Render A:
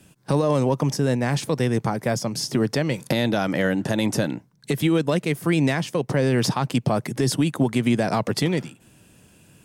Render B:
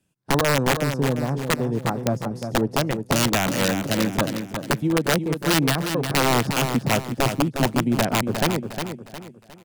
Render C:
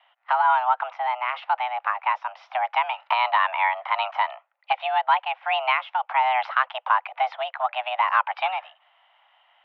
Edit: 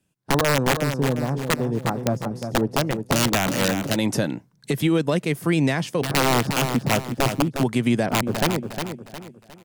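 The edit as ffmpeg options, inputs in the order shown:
-filter_complex "[0:a]asplit=2[s0][s1];[1:a]asplit=3[s2][s3][s4];[s2]atrim=end=3.962[s5];[s0]atrim=start=3.958:end=6.022[s6];[s3]atrim=start=6.018:end=7.632[s7];[s1]atrim=start=7.628:end=8.062[s8];[s4]atrim=start=8.058[s9];[s5][s6]acrossfade=d=0.004:c1=hsin:c2=hsin[s10];[s10][s7]acrossfade=d=0.004:c1=hsin:c2=hsin[s11];[s11][s8]acrossfade=d=0.004:c1=hsin:c2=hsin[s12];[s12][s9]acrossfade=d=0.004:c1=hsin:c2=hsin"

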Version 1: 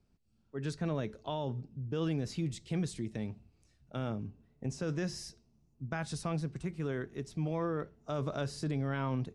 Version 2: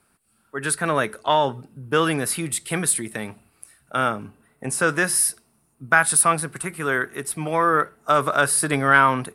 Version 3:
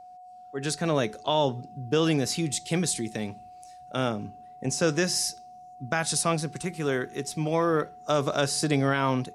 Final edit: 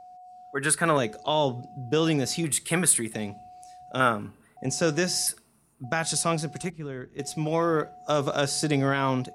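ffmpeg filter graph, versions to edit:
-filter_complex "[1:a]asplit=4[s0][s1][s2][s3];[2:a]asplit=6[s4][s5][s6][s7][s8][s9];[s4]atrim=end=0.552[s10];[s0]atrim=start=0.548:end=0.972[s11];[s5]atrim=start=0.968:end=2.442[s12];[s1]atrim=start=2.438:end=3.142[s13];[s6]atrim=start=3.138:end=4.002[s14];[s2]atrim=start=3.998:end=4.572[s15];[s7]atrim=start=4.568:end=5.272[s16];[s3]atrim=start=5.268:end=5.842[s17];[s8]atrim=start=5.838:end=6.702[s18];[0:a]atrim=start=6.698:end=7.192[s19];[s9]atrim=start=7.188[s20];[s10][s11]acrossfade=d=0.004:c1=hsin:c2=hsin[s21];[s21][s12]acrossfade=d=0.004:c1=hsin:c2=hsin[s22];[s22][s13]acrossfade=d=0.004:c1=hsin:c2=hsin[s23];[s23][s14]acrossfade=d=0.004:c1=hsin:c2=hsin[s24];[s24][s15]acrossfade=d=0.004:c1=hsin:c2=hsin[s25];[s25][s16]acrossfade=d=0.004:c1=hsin:c2=hsin[s26];[s26][s17]acrossfade=d=0.004:c1=hsin:c2=hsin[s27];[s27][s18]acrossfade=d=0.004:c1=hsin:c2=hsin[s28];[s28][s19]acrossfade=d=0.004:c1=hsin:c2=hsin[s29];[s29][s20]acrossfade=d=0.004:c1=hsin:c2=hsin"

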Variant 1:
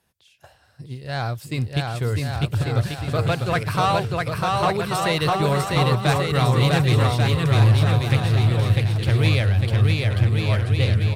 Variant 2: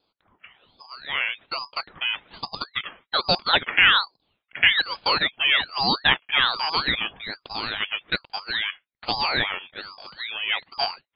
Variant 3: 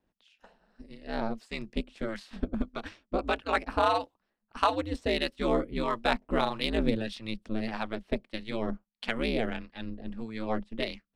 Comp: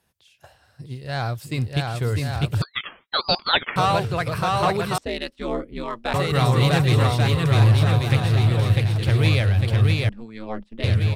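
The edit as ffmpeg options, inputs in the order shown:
-filter_complex "[2:a]asplit=2[s0][s1];[0:a]asplit=4[s2][s3][s4][s5];[s2]atrim=end=2.622[s6];[1:a]atrim=start=2.618:end=3.762[s7];[s3]atrim=start=3.758:end=4.982[s8];[s0]atrim=start=4.978:end=6.142[s9];[s4]atrim=start=6.138:end=10.092[s10];[s1]atrim=start=10.088:end=10.842[s11];[s5]atrim=start=10.838[s12];[s6][s7]acrossfade=d=0.004:c1=hsin:c2=hsin[s13];[s13][s8]acrossfade=d=0.004:c1=hsin:c2=hsin[s14];[s14][s9]acrossfade=d=0.004:c1=hsin:c2=hsin[s15];[s15][s10]acrossfade=d=0.004:c1=hsin:c2=hsin[s16];[s16][s11]acrossfade=d=0.004:c1=hsin:c2=hsin[s17];[s17][s12]acrossfade=d=0.004:c1=hsin:c2=hsin"

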